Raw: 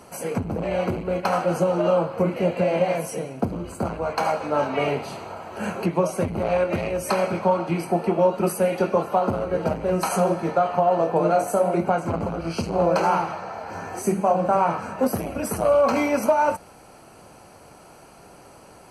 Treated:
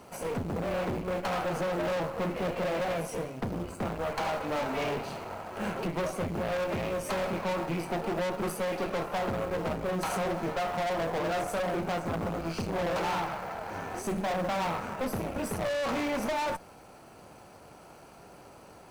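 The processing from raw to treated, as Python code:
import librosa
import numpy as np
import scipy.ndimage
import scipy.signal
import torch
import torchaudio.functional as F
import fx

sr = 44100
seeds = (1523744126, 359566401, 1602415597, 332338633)

p1 = fx.high_shelf(x, sr, hz=5900.0, db=-7.5)
p2 = fx.tube_stage(p1, sr, drive_db=29.0, bias=0.75)
p3 = fx.quant_companded(p2, sr, bits=4)
p4 = p2 + (p3 * 10.0 ** (-6.0 / 20.0))
y = p4 * 10.0 ** (-3.0 / 20.0)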